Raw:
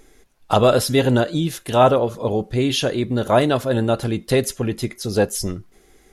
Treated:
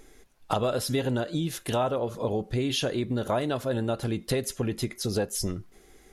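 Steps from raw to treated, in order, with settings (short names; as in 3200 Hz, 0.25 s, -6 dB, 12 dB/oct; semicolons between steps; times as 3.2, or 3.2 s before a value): compressor 4:1, threshold -23 dBFS, peak gain reduction 12.5 dB; gain -2 dB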